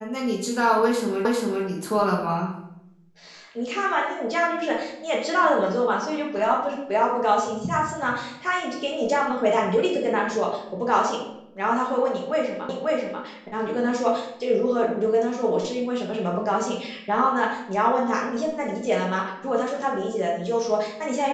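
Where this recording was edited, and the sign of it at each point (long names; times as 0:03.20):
0:01.25: the same again, the last 0.4 s
0:12.69: the same again, the last 0.54 s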